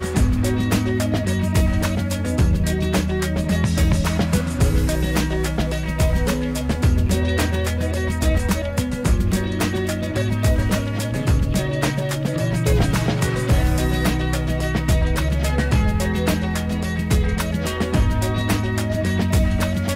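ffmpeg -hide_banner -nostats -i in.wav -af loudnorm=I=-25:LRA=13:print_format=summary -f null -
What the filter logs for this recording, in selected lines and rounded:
Input Integrated:    -20.8 LUFS
Input True Peak:      -8.8 dBTP
Input LRA:             1.0 LU
Input Threshold:     -30.8 LUFS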